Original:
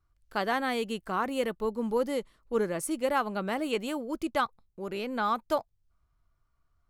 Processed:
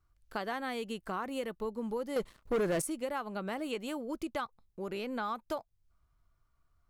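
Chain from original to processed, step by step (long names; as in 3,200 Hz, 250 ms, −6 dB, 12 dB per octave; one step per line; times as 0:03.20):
downward compressor 3 to 1, threshold −35 dBFS, peak gain reduction 10 dB
0:02.16–0:02.82: leveller curve on the samples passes 3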